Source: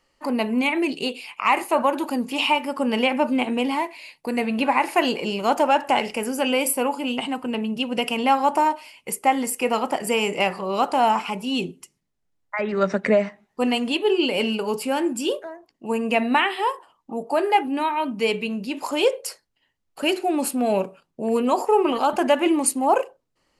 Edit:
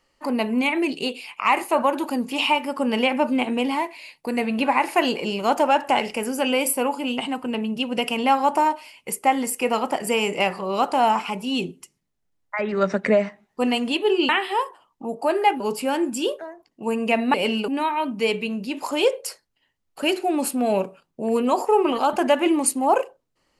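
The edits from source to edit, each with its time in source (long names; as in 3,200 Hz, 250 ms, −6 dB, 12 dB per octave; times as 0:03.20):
0:14.29–0:14.63: swap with 0:16.37–0:17.68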